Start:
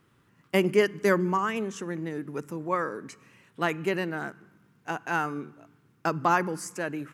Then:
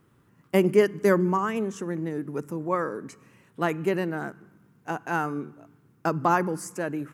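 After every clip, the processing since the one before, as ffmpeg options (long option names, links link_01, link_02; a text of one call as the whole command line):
ffmpeg -i in.wav -af "equalizer=frequency=3200:width_type=o:width=2.6:gain=-7.5,volume=3.5dB" out.wav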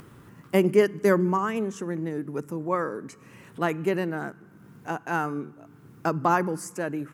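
ffmpeg -i in.wav -af "acompressor=mode=upward:threshold=-37dB:ratio=2.5" out.wav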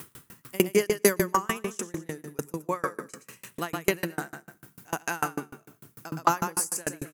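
ffmpeg -i in.wav -af "crystalizer=i=7.5:c=0,aecho=1:1:119|238|357|476:0.355|0.124|0.0435|0.0152,aeval=exprs='val(0)*pow(10,-33*if(lt(mod(6.7*n/s,1),2*abs(6.7)/1000),1-mod(6.7*n/s,1)/(2*abs(6.7)/1000),(mod(6.7*n/s,1)-2*abs(6.7)/1000)/(1-2*abs(6.7)/1000))/20)':channel_layout=same,volume=2.5dB" out.wav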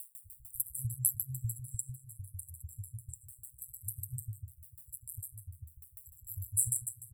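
ffmpeg -i in.wav -filter_complex "[0:a]acrossover=split=410[link_01][link_02];[link_01]adelay=250[link_03];[link_03][link_02]amix=inputs=2:normalize=0,aeval=exprs='val(0)*sin(2*PI*64*n/s)':channel_layout=same,afftfilt=real='re*(1-between(b*sr/4096,130,7500))':imag='im*(1-between(b*sr/4096,130,7500))':win_size=4096:overlap=0.75,volume=2.5dB" out.wav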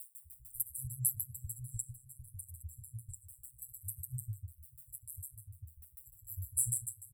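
ffmpeg -i in.wav -filter_complex "[0:a]asplit=2[link_01][link_02];[link_02]adelay=7.3,afreqshift=-1.6[link_03];[link_01][link_03]amix=inputs=2:normalize=1,volume=1dB" out.wav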